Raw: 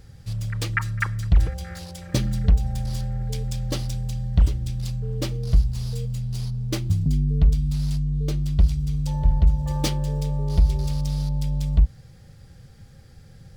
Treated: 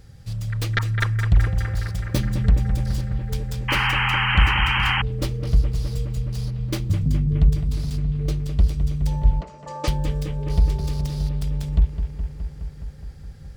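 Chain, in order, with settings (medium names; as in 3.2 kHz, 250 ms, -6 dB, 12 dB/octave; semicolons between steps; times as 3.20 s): tracing distortion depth 0.17 ms; on a send: bucket-brigade echo 209 ms, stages 4096, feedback 78%, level -8 dB; 3.68–5.02 s: on the sum: painted sound noise 760–3200 Hz -22 dBFS; 9.41–9.88 s: cabinet simulation 380–7600 Hz, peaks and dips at 610 Hz +5 dB, 1.2 kHz +6 dB, 3.5 kHz -7 dB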